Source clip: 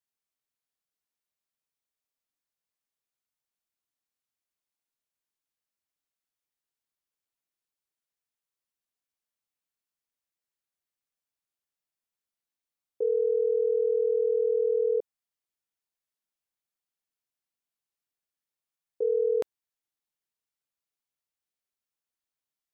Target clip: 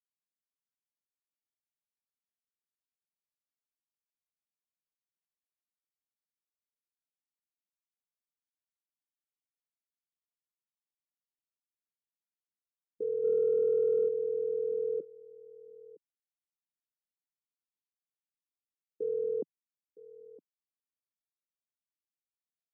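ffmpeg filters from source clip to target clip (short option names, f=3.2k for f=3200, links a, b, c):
-filter_complex "[0:a]afwtdn=0.00794,asplit=3[a][b][c];[a]afade=t=out:st=13.23:d=0.02[d];[b]acontrast=76,afade=t=in:st=13.23:d=0.02,afade=t=out:st=14.07:d=0.02[e];[c]afade=t=in:st=14.07:d=0.02[f];[d][e][f]amix=inputs=3:normalize=0,asoftclip=type=tanh:threshold=-15dB,asuperpass=centerf=220:order=4:qfactor=1.4,asplit=2[g][h];[h]aecho=0:1:963:0.1[i];[g][i]amix=inputs=2:normalize=0,volume=8dB"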